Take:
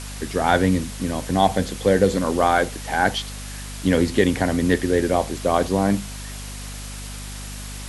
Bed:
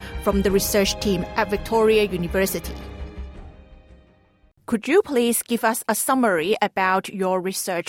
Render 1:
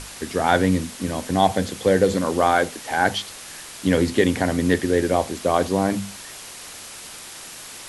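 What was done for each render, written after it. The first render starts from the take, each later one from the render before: notches 50/100/150/200/250 Hz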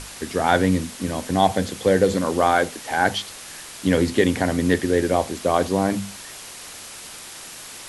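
nothing audible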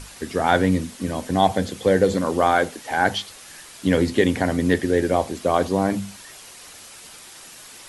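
denoiser 6 dB, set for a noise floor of -39 dBFS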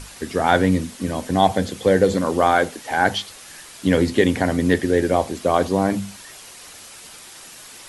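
gain +1.5 dB

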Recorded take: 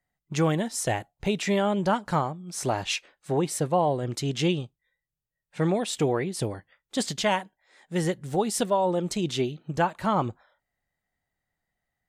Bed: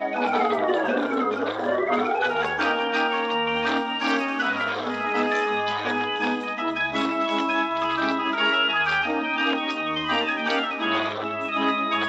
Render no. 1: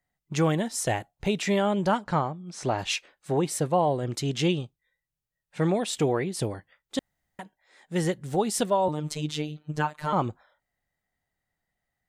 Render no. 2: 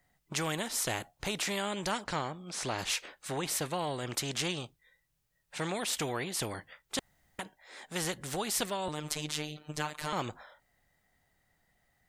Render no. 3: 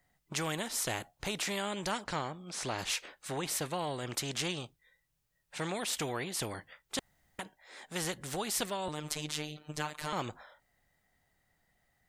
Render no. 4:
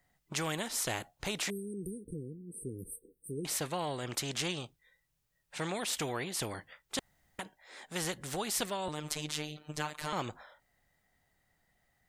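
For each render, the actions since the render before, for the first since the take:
2.04–2.79 air absorption 86 m; 6.99–7.39 room tone; 8.88–10.13 robotiser 151 Hz
spectral compressor 2:1
gain -1.5 dB
1.5–3.45 brick-wall FIR band-stop 500–8200 Hz

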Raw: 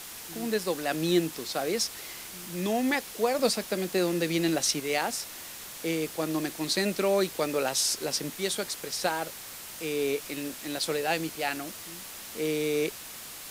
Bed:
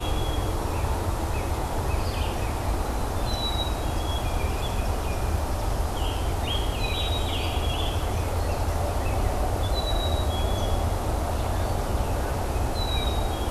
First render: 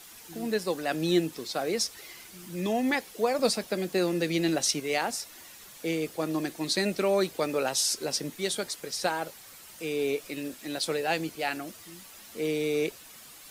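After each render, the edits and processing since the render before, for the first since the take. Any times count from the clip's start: denoiser 9 dB, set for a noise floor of -43 dBFS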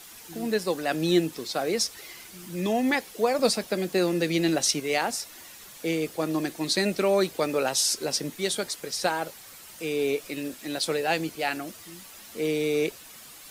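gain +2.5 dB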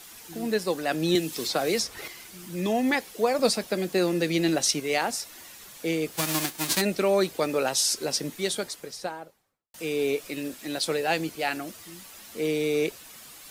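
1.15–2.08 three-band squash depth 100%; 6.11–6.8 spectral whitening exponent 0.3; 8.38–9.74 studio fade out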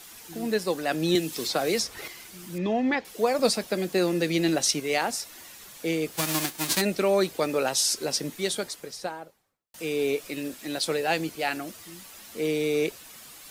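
2.58–3.05 air absorption 190 m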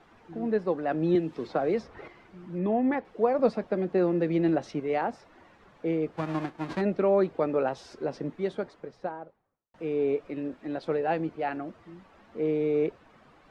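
LPF 1200 Hz 12 dB/oct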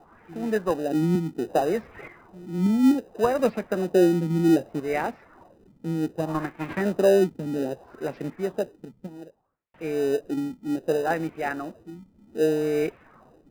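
LFO low-pass sine 0.64 Hz 210–2500 Hz; in parallel at -11.5 dB: sample-and-hold 40×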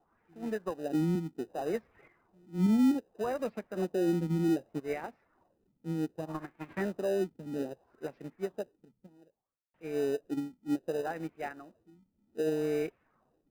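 limiter -18.5 dBFS, peak gain reduction 10 dB; upward expander 2.5:1, over -34 dBFS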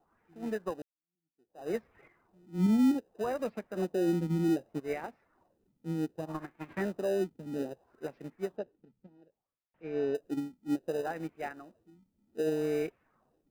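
0.82–1.71 fade in exponential; 8.57–10.15 air absorption 210 m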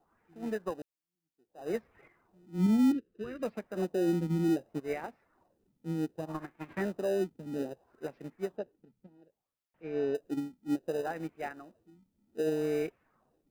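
2.92–3.43 EQ curve 380 Hz 0 dB, 820 Hz -29 dB, 1300 Hz -6 dB, 2800 Hz -3 dB, 7700 Hz -16 dB

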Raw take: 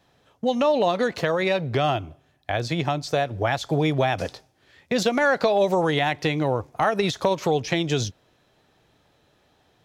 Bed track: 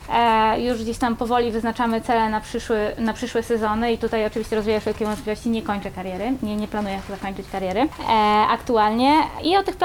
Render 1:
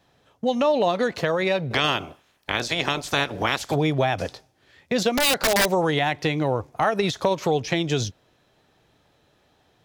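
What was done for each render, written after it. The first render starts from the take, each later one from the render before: 1.7–3.74 spectral limiter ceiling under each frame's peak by 21 dB; 5.15–5.71 wrapped overs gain 14 dB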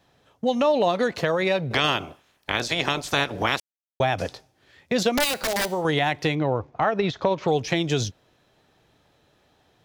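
3.6–4 mute; 5.24–5.85 resonator 73 Hz, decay 0.59 s, harmonics odd, mix 50%; 6.35–7.48 air absorption 180 m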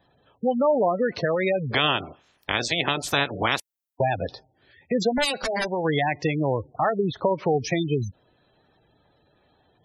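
spectral gate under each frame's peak -15 dB strong; high shelf 9300 Hz +11 dB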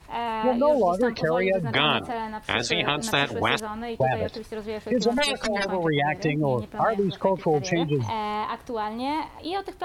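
add bed track -11.5 dB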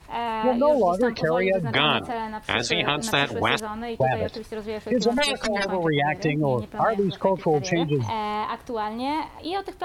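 gain +1 dB

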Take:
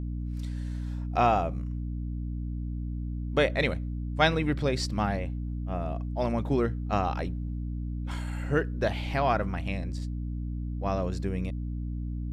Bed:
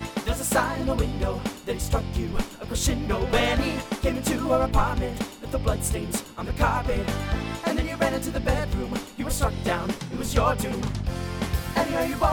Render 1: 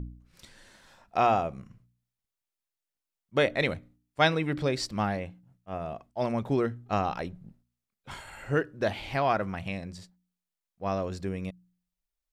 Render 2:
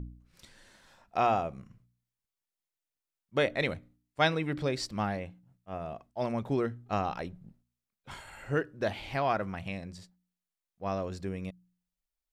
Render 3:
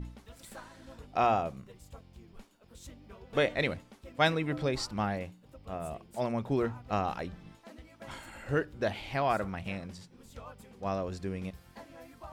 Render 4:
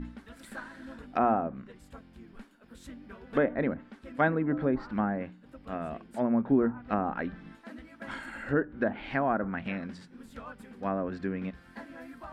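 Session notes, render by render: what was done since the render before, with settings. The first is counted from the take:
de-hum 60 Hz, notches 5
gain -3 dB
add bed -25.5 dB
treble ducked by the level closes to 990 Hz, closed at -27.5 dBFS; fifteen-band EQ 100 Hz -9 dB, 250 Hz +11 dB, 1600 Hz +11 dB, 6300 Hz -6 dB

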